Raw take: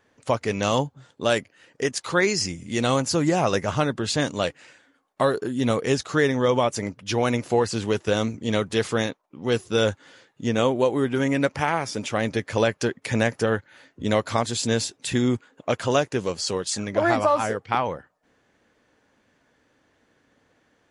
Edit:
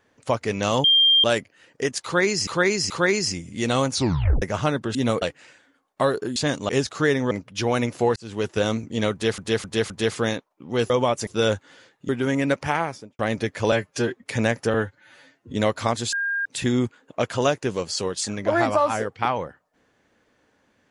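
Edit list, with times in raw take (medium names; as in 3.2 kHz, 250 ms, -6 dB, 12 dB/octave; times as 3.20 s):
0.84–1.24 s: bleep 3.19 kHz -13 dBFS
2.04–2.47 s: loop, 3 plays
3.05 s: tape stop 0.51 s
4.09–4.42 s: swap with 5.56–5.83 s
6.45–6.82 s: move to 9.63 s
7.67–8.00 s: fade in
8.63–8.89 s: loop, 4 plays
10.45–11.02 s: delete
11.69–12.12 s: studio fade out
12.65–12.99 s: stretch 1.5×
13.50–14.03 s: stretch 1.5×
14.62–14.95 s: bleep 1.61 kHz -22 dBFS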